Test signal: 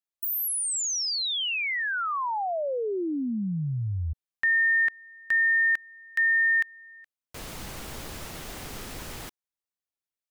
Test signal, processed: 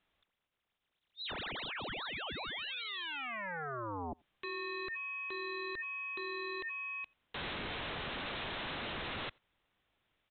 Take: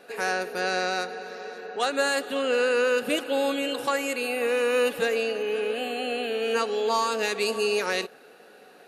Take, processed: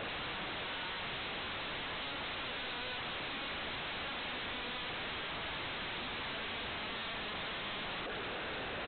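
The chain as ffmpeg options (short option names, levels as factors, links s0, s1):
-filter_complex "[0:a]lowshelf=f=120:g=8.5,acompressor=threshold=0.0112:ratio=8:attack=0.11:release=68:knee=1:detection=rms,aresample=8000,aeval=exprs='0.0188*sin(PI/2*8.91*val(0)/0.0188)':c=same,aresample=44100,asplit=2[s0][s1];[s1]adelay=87.46,volume=0.0316,highshelf=f=4000:g=-1.97[s2];[s0][s2]amix=inputs=2:normalize=0,volume=0.708"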